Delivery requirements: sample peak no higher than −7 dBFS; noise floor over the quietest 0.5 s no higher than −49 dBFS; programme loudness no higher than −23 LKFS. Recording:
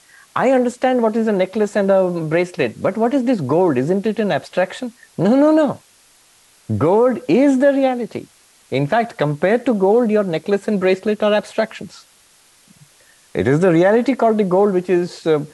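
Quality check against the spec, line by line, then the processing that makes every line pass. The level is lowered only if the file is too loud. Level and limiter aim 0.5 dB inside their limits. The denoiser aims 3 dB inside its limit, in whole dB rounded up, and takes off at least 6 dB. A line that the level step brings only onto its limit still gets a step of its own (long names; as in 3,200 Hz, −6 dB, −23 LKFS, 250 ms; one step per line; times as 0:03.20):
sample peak −5.0 dBFS: out of spec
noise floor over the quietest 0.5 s −52 dBFS: in spec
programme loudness −17.0 LKFS: out of spec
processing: level −6.5 dB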